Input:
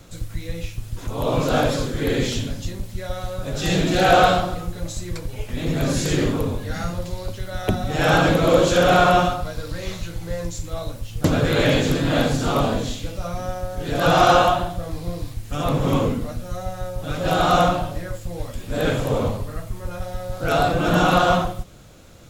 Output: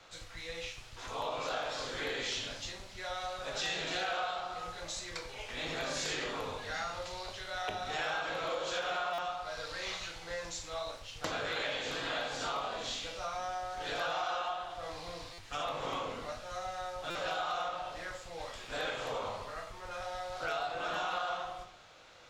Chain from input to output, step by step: three-band isolator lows -21 dB, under 560 Hz, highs -23 dB, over 5.6 kHz; band-stop 570 Hz, Q 12; on a send at -4.5 dB: reverberation RT60 0.45 s, pre-delay 16 ms; on the sum: compression 6:1, threshold -31 dBFS, peak gain reduction 17.5 dB; dynamic bell 8.3 kHz, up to +6 dB, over -57 dBFS, Q 0.76; buffer glitch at 9.13/15.33/17.10 s, samples 256, times 8; trim -3 dB

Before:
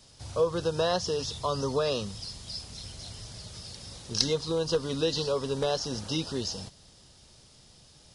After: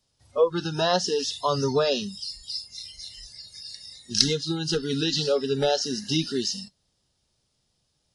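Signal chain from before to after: spectral noise reduction 23 dB; trim +6 dB

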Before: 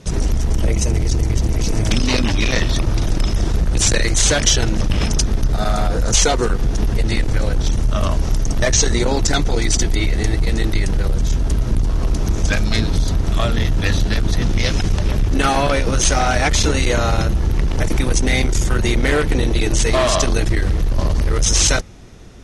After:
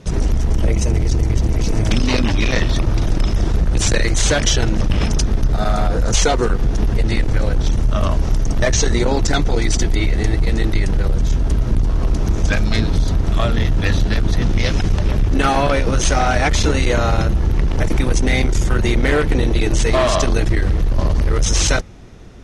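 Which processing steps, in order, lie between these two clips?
treble shelf 4.3 kHz -7.5 dB; trim +1 dB

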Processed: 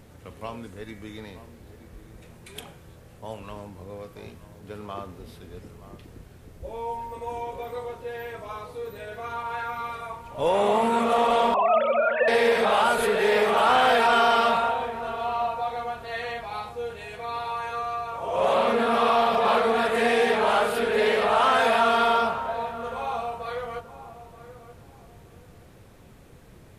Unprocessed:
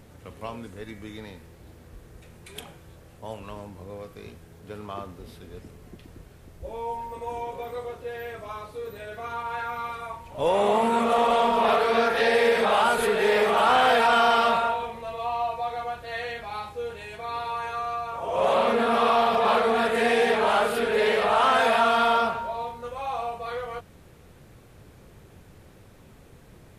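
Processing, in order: 11.54–12.28 s: formants replaced by sine waves; filtered feedback delay 927 ms, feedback 30%, low-pass 1.2 kHz, level -13 dB

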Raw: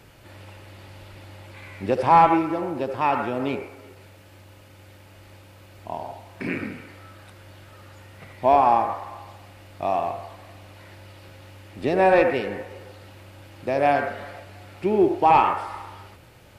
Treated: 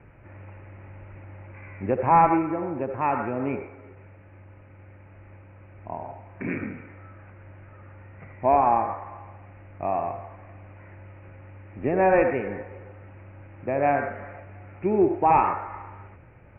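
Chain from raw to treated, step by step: steep low-pass 2.5 kHz 72 dB/octave; bass shelf 200 Hz +5.5 dB; trim -3 dB

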